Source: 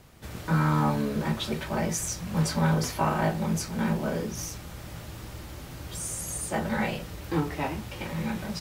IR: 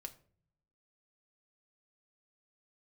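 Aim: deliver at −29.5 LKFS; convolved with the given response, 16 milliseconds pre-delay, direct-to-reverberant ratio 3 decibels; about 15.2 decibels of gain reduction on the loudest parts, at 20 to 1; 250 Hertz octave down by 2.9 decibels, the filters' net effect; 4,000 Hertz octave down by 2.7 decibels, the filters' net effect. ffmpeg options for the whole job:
-filter_complex "[0:a]equalizer=frequency=250:width_type=o:gain=-4.5,equalizer=frequency=4000:width_type=o:gain=-3.5,acompressor=threshold=-36dB:ratio=20,asplit=2[link_01][link_02];[1:a]atrim=start_sample=2205,adelay=16[link_03];[link_02][link_03]afir=irnorm=-1:irlink=0,volume=1.5dB[link_04];[link_01][link_04]amix=inputs=2:normalize=0,volume=10dB"

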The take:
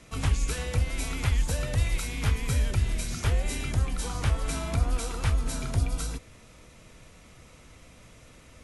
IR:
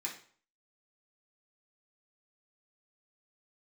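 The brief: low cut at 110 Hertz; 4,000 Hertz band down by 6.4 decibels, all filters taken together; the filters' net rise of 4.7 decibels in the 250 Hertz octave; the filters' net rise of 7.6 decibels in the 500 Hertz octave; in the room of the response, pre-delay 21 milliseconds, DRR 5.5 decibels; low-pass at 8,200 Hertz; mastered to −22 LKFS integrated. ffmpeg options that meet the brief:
-filter_complex "[0:a]highpass=110,lowpass=8200,equalizer=frequency=250:width_type=o:gain=4.5,equalizer=frequency=500:width_type=o:gain=8,equalizer=frequency=4000:width_type=o:gain=-8.5,asplit=2[link_01][link_02];[1:a]atrim=start_sample=2205,adelay=21[link_03];[link_02][link_03]afir=irnorm=-1:irlink=0,volume=-6.5dB[link_04];[link_01][link_04]amix=inputs=2:normalize=0,volume=9dB"

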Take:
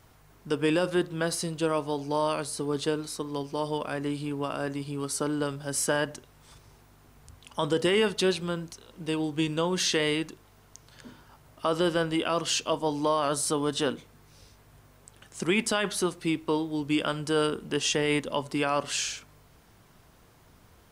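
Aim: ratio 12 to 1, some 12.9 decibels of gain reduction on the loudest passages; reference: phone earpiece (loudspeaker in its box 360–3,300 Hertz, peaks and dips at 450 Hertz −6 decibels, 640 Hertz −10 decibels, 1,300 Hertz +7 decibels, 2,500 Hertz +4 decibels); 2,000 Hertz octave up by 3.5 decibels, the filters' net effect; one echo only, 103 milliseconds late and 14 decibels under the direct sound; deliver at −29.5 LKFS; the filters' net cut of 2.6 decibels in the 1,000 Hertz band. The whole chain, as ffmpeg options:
ffmpeg -i in.wav -af "equalizer=frequency=1000:width_type=o:gain=-7.5,equalizer=frequency=2000:width_type=o:gain=4,acompressor=threshold=-34dB:ratio=12,highpass=360,equalizer=frequency=450:width_type=q:width=4:gain=-6,equalizer=frequency=640:width_type=q:width=4:gain=-10,equalizer=frequency=1300:width_type=q:width=4:gain=7,equalizer=frequency=2500:width_type=q:width=4:gain=4,lowpass=frequency=3300:width=0.5412,lowpass=frequency=3300:width=1.3066,aecho=1:1:103:0.2,volume=12.5dB" out.wav

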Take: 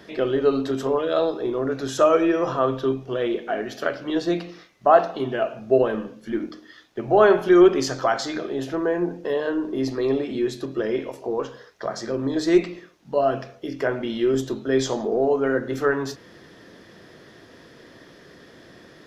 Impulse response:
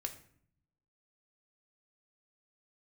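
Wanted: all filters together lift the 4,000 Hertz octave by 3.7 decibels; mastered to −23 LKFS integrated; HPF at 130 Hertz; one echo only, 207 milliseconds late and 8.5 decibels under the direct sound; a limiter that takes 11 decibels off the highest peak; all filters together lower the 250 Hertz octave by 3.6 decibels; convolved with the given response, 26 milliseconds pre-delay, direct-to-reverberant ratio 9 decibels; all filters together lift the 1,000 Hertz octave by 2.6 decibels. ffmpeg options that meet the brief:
-filter_complex "[0:a]highpass=130,equalizer=frequency=250:width_type=o:gain=-6,equalizer=frequency=1000:width_type=o:gain=4,equalizer=frequency=4000:width_type=o:gain=4.5,alimiter=limit=-11.5dB:level=0:latency=1,aecho=1:1:207:0.376,asplit=2[link_01][link_02];[1:a]atrim=start_sample=2205,adelay=26[link_03];[link_02][link_03]afir=irnorm=-1:irlink=0,volume=-8dB[link_04];[link_01][link_04]amix=inputs=2:normalize=0,volume=1dB"

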